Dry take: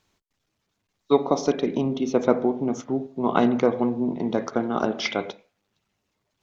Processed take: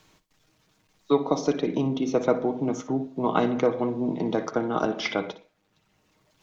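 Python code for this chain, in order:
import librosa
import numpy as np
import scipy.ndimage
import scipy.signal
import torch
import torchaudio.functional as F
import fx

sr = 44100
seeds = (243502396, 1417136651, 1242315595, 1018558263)

y = x + 0.39 * np.pad(x, (int(6.4 * sr / 1000.0), 0))[:len(x)]
y = fx.room_flutter(y, sr, wall_m=10.4, rt60_s=0.24)
y = fx.band_squash(y, sr, depth_pct=40)
y = y * librosa.db_to_amplitude(-2.0)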